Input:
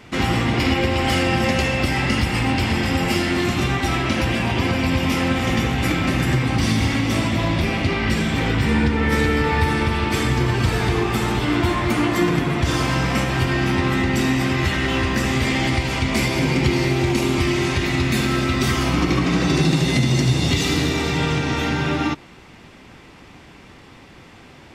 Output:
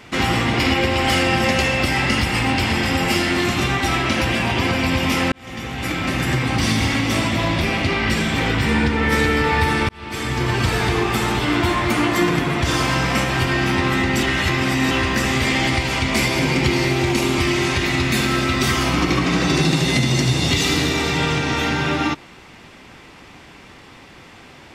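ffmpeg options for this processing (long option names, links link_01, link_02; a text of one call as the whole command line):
ffmpeg -i in.wav -filter_complex "[0:a]asplit=5[link_01][link_02][link_03][link_04][link_05];[link_01]atrim=end=5.32,asetpts=PTS-STARTPTS,afade=type=out:start_time=5.316:duration=0.004:curve=hsin[link_06];[link_02]atrim=start=5.32:end=9.89,asetpts=PTS-STARTPTS,afade=type=in:duration=1.43:curve=qsin,afade=type=out:start_time=4.566:duration=0.004:curve=hsin[link_07];[link_03]atrim=start=9.89:end=14.232,asetpts=PTS-STARTPTS,afade=type=in:duration=0.64[link_08];[link_04]atrim=start=14.228:end=14.912,asetpts=PTS-STARTPTS,areverse[link_09];[link_05]atrim=start=14.908[link_10];[link_06][link_07][link_08]concat=n=3:v=0:a=1[link_11];[link_11][link_09]acrossfade=duration=0.004:curve1=hsin:curve2=hsin[link_12];[link_12][link_10]acrossfade=duration=0.004:curve1=hsin:curve2=hsin,lowshelf=frequency=440:gain=-5,volume=3.5dB" out.wav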